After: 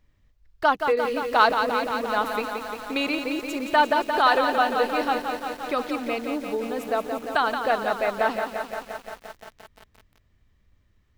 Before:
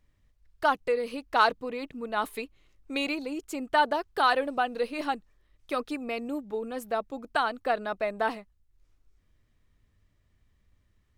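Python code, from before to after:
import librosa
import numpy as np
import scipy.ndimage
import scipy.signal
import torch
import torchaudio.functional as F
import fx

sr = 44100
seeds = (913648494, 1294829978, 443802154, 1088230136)

y = fx.peak_eq(x, sr, hz=10000.0, db=-7.5, octaves=0.77)
y = fx.echo_crushed(y, sr, ms=174, feedback_pct=80, bits=8, wet_db=-6.5)
y = y * 10.0 ** (4.0 / 20.0)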